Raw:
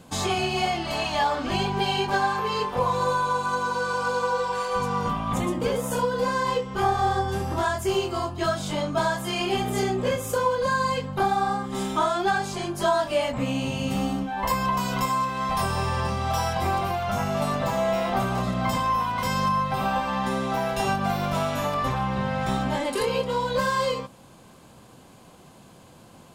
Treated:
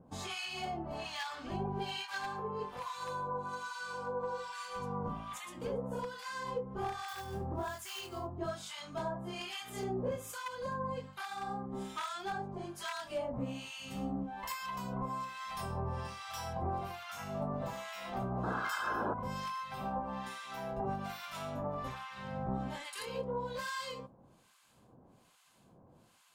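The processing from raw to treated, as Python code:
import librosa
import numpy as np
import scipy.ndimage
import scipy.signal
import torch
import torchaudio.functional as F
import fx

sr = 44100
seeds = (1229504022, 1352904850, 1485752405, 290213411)

y = np.minimum(x, 2.0 * 10.0 ** (-16.5 / 20.0) - x)
y = fx.quant_float(y, sr, bits=2, at=(7.08, 8.36))
y = fx.spec_paint(y, sr, seeds[0], shape='noise', start_s=18.43, length_s=0.71, low_hz=200.0, high_hz=1700.0, level_db=-22.0)
y = fx.harmonic_tremolo(y, sr, hz=1.2, depth_pct=100, crossover_hz=1100.0)
y = F.gain(torch.from_numpy(y), -9.0).numpy()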